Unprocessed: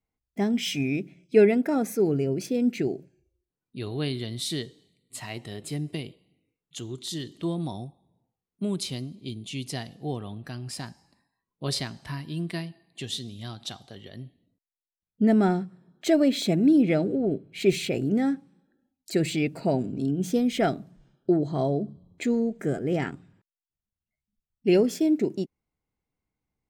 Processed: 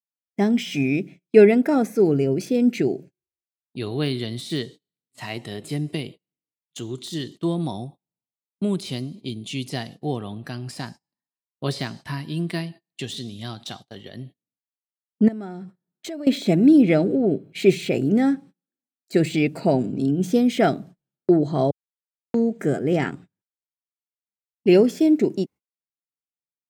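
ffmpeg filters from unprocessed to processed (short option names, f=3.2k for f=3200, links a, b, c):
-filter_complex "[0:a]asettb=1/sr,asplit=3[a][b][c];[a]atrim=end=15.284[d];[b]atrim=start=15.28:end=16.27,asetpts=PTS-STARTPTS,afade=t=in:d=0.004:c=qsin,afade=t=out:st=0.986:d=0.004:c=qsin,acompressor=threshold=-37dB:ratio=5:attack=3.2:release=140:knee=1:detection=peak[e];[c]atrim=start=16.266[f];[d][e]acrossfade=d=0.004:c1=hsin:c2=qsin[g];[g][f]acrossfade=d=0.004:c1=qsin:c2=hsin,asplit=3[h][i][j];[h]atrim=end=21.71,asetpts=PTS-STARTPTS,afade=t=out:st=21.706:d=0.004:c=hsin[k];[i]atrim=start=21.71:end=22.34,asetpts=PTS-STARTPTS,volume=0[l];[j]atrim=start=22.34,asetpts=PTS-STARTPTS,afade=t=in:d=0.004:c=hsin[m];[k][l][m]concat=n=3:v=0:a=1,deesser=0.9,agate=range=-31dB:threshold=-45dB:ratio=16:detection=peak,highpass=110,volume=5.5dB"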